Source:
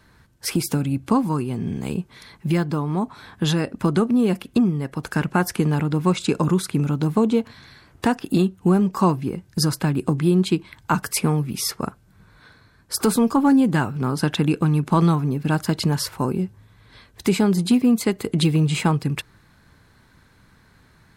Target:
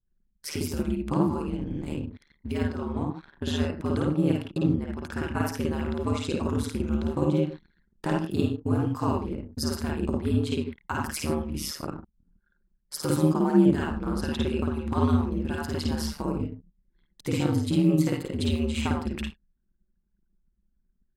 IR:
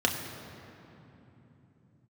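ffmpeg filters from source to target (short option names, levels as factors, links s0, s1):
-filter_complex "[0:a]asplit=2[s0][s1];[1:a]atrim=start_sample=2205,afade=t=out:st=0.16:d=0.01,atrim=end_sample=7497,adelay=52[s2];[s1][s2]afir=irnorm=-1:irlink=0,volume=0.355[s3];[s0][s3]amix=inputs=2:normalize=0,aeval=exprs='val(0)*sin(2*PI*75*n/s)':c=same,anlmdn=0.631,volume=0.398"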